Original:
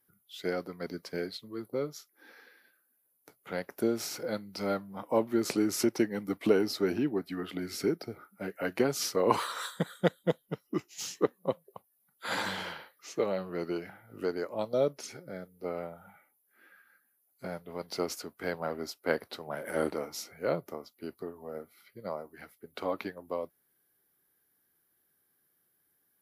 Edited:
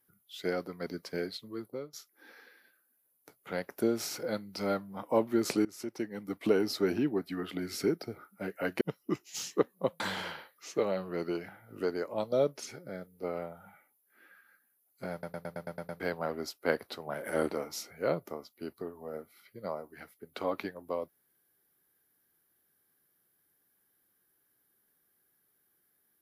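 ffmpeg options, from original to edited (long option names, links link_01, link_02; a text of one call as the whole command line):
ffmpeg -i in.wav -filter_complex "[0:a]asplit=13[link_01][link_02][link_03][link_04][link_05][link_06][link_07][link_08][link_09][link_10][link_11][link_12][link_13];[link_01]atrim=end=1.93,asetpts=PTS-STARTPTS,afade=type=out:start_time=1.54:duration=0.39:silence=0.112202[link_14];[link_02]atrim=start=1.93:end=5.65,asetpts=PTS-STARTPTS,afade=type=in:duration=0.004:curve=hsin:silence=0.112202,afade=type=out:start_time=3.716:duration=0.004:curve=hsin:silence=0.0891251[link_15];[link_03]atrim=start=5.65:end=8.812,asetpts=PTS-STARTPTS,afade=type=in:duration=1.11:silence=0.0891251[link_16];[link_04]atrim=start=10.448:end=11.642[link_17];[link_05]atrim=start=12.408:end=17.642[link_18];[link_06]atrim=start=17.528:end=17.642[link_19];[link_07]atrim=start=17.528:end=17.642[link_20];[link_08]atrim=start=17.528:end=17.642[link_21];[link_09]atrim=start=17.528:end=17.642[link_22];[link_10]atrim=start=17.528:end=17.642[link_23];[link_11]atrim=start=17.528:end=17.642[link_24];[link_12]atrim=start=17.528:end=17.642[link_25];[link_13]atrim=start=18.408[link_26];[link_14][link_15][link_16]concat=n=3:v=0:a=1[link_27];[link_27][link_17]acrossfade=duration=0.004:curve1=hsin:curve2=hsin[link_28];[link_28][link_18]acrossfade=duration=0.004:curve1=hsin:curve2=hsin[link_29];[link_29][link_19]acrossfade=duration=0.004:curve1=hsin:curve2=hsin[link_30];[link_30][link_20]acrossfade=duration=0.004:curve1=hsin:curve2=hsin[link_31];[link_31][link_21]acrossfade=duration=0.004:curve1=hsin:curve2=hsin[link_32];[link_32][link_22]acrossfade=duration=0.004:curve1=hsin:curve2=hsin[link_33];[link_33][link_23]acrossfade=duration=0.004:curve1=hsin:curve2=hsin[link_34];[link_34][link_24]acrossfade=duration=0.004:curve1=hsin:curve2=hsin[link_35];[link_35][link_25]acrossfade=duration=0.004:curve1=hsin:curve2=hsin[link_36];[link_36][link_26]acrossfade=duration=0.004:curve1=hsin:curve2=hsin" out.wav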